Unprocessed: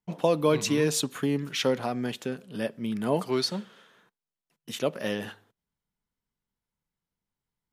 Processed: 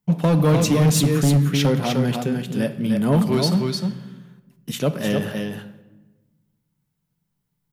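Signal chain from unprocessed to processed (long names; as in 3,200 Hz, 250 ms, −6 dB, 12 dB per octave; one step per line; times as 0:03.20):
high-shelf EQ 12,000 Hz +11 dB
on a send: single-tap delay 304 ms −5 dB
on the sum: rectangular room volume 710 cubic metres, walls mixed, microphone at 0.38 metres
in parallel at −4.5 dB: soft clipping −22 dBFS, distortion −11 dB
on the sum: parametric band 160 Hz +14 dB 0.99 octaves
gain into a clipping stage and back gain 12 dB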